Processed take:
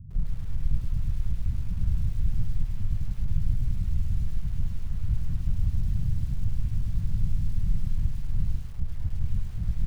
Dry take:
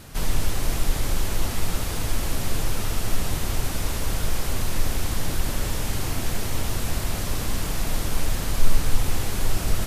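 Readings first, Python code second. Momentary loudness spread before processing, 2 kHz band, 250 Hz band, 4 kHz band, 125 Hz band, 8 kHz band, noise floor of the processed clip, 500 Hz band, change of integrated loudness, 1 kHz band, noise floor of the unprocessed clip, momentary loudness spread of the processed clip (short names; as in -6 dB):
1 LU, under -20 dB, -7.0 dB, under -20 dB, +0.5 dB, under -25 dB, -33 dBFS, under -25 dB, -3.5 dB, under -20 dB, -29 dBFS, 5 LU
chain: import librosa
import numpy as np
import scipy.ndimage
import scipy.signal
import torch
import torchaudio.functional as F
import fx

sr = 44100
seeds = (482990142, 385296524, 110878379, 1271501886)

y = scipy.signal.sosfilt(scipy.signal.cheby2(4, 60, 540.0, 'lowpass', fs=sr, output='sos'), x)
y = fx.over_compress(y, sr, threshold_db=-24.0, ratio=-1.0)
y = fx.echo_crushed(y, sr, ms=104, feedback_pct=55, bits=8, wet_db=-7.5)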